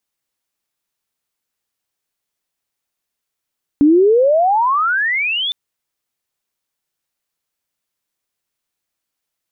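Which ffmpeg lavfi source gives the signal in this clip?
-f lavfi -i "aevalsrc='pow(10,(-6.5-10.5*t/1.71)/20)*sin(2*PI*280*1.71/log(3600/280)*(exp(log(3600/280)*t/1.71)-1))':d=1.71:s=44100"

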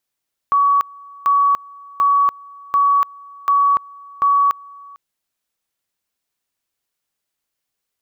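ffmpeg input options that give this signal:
-f lavfi -i "aevalsrc='pow(10,(-11-25*gte(mod(t,0.74),0.29))/20)*sin(2*PI*1130*t)':d=4.44:s=44100"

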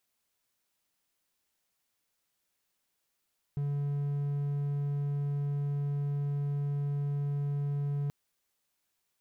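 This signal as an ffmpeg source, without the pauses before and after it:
-f lavfi -i "aevalsrc='0.0447*(1-4*abs(mod(143*t+0.25,1)-0.5))':d=4.53:s=44100"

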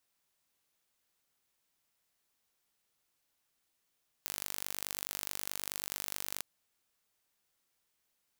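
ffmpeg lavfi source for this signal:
-f lavfi -i "aevalsrc='0.355*eq(mod(n,893),0)*(0.5+0.5*eq(mod(n,1786),0))':d=2.16:s=44100"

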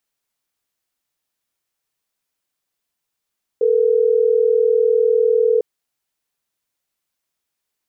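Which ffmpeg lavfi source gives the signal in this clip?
-f lavfi -i "aevalsrc='0.178*(sin(2*PI*440*t)+sin(2*PI*480*t))*clip(min(mod(t,6),2-mod(t,6))/0.005,0,1)':d=3.12:s=44100"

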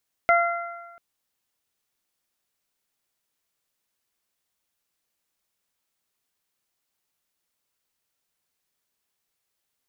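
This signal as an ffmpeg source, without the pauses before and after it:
-f lavfi -i "aevalsrc='0.158*pow(10,-3*t/1.19)*sin(2*PI*687*t)+0.126*pow(10,-3*t/1.33)*sin(2*PI*1374*t)+0.1*pow(10,-3*t/1.01)*sin(2*PI*2061*t)':d=0.69:s=44100"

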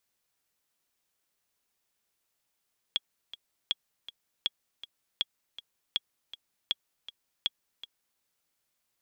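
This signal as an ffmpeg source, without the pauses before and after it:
-f lavfi -i "aevalsrc='pow(10,(-14-15*gte(mod(t,2*60/160),60/160))/20)*sin(2*PI*3330*mod(t,60/160))*exp(-6.91*mod(t,60/160)/0.03)':d=5.25:s=44100"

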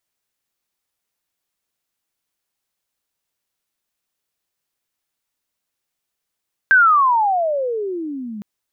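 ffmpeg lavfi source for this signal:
-f lavfi -i "aevalsrc='pow(10,(-7.5-20*t/1.71)/20)*sin(2*PI*1600*1.71/log(200/1600)*(exp(log(200/1600)*t/1.71)-1))':d=1.71:s=44100"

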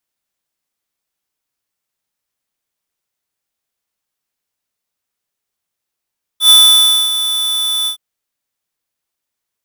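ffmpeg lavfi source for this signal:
-f lavfi -i "aevalsrc='0.562*(2*lt(mod(3490*t,1),0.5)-1)':d=1.567:s=44100,afade=t=in:d=0.097,afade=t=out:st=0.097:d=0.598:silence=0.266,afade=t=out:st=1.47:d=0.097"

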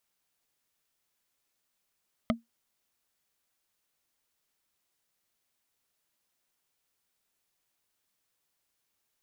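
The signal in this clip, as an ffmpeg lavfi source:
-f lavfi -i "aevalsrc='0.1*pow(10,-3*t/0.16)*sin(2*PI*231*t)+0.0841*pow(10,-3*t/0.047)*sin(2*PI*636.9*t)+0.0708*pow(10,-3*t/0.021)*sin(2*PI*1248.3*t)+0.0596*pow(10,-3*t/0.012)*sin(2*PI*2063.5*t)+0.0501*pow(10,-3*t/0.007)*sin(2*PI*3081.5*t)':d=0.45:s=44100"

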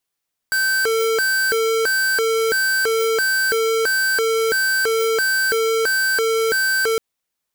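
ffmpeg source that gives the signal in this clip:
-f lavfi -i "aevalsrc='0.119*(2*lt(mod((999.5*t+550.5/1.5*(0.5-abs(mod(1.5*t,1)-0.5))),1),0.5)-1)':d=6.46:s=44100"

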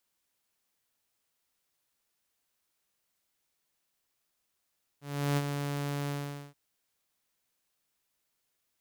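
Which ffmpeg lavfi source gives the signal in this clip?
-f lavfi -i "aevalsrc='0.075*(2*mod(143*t,1)-1)':d=1.528:s=44100,afade=t=in:d=0.359,afade=t=out:st=0.359:d=0.043:silence=0.473,afade=t=out:st=1.08:d=0.448"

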